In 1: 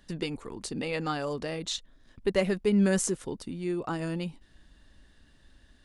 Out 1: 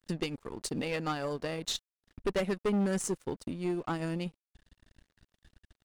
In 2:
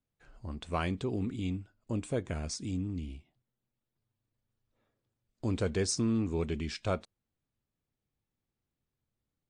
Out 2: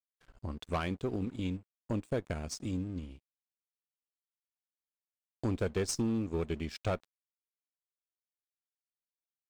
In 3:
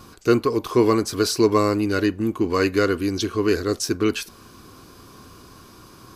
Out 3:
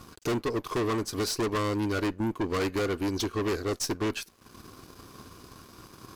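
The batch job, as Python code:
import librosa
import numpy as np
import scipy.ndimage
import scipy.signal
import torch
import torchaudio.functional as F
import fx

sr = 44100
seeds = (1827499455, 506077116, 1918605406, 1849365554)

y = fx.transient(x, sr, attack_db=6, sustain_db=-7)
y = fx.tube_stage(y, sr, drive_db=25.0, bias=0.35)
y = np.sign(y) * np.maximum(np.abs(y) - 10.0 ** (-56.0 / 20.0), 0.0)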